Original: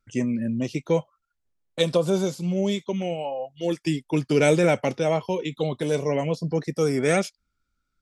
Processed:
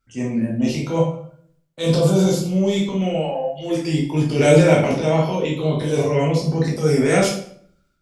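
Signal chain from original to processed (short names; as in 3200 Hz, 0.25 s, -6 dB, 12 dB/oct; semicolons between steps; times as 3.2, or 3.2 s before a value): transient shaper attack -8 dB, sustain +7 dB; reverb RT60 0.60 s, pre-delay 9 ms, DRR -3.5 dB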